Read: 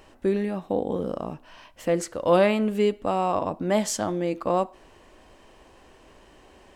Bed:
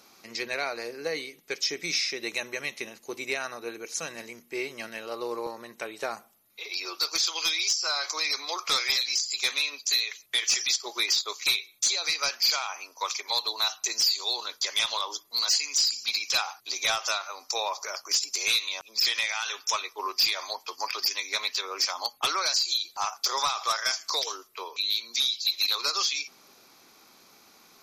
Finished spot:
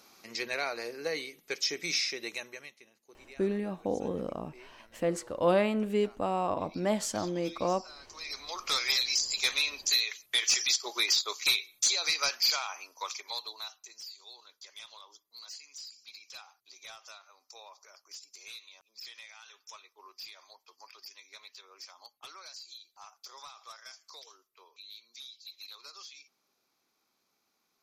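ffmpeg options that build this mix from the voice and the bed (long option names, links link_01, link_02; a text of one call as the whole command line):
ffmpeg -i stem1.wav -i stem2.wav -filter_complex "[0:a]adelay=3150,volume=-6dB[link_01];[1:a]volume=17.5dB,afade=type=out:start_time=2.02:duration=0.75:silence=0.112202,afade=type=in:start_time=8.07:duration=0.95:silence=0.1,afade=type=out:start_time=12.21:duration=1.65:silence=0.1[link_02];[link_01][link_02]amix=inputs=2:normalize=0" out.wav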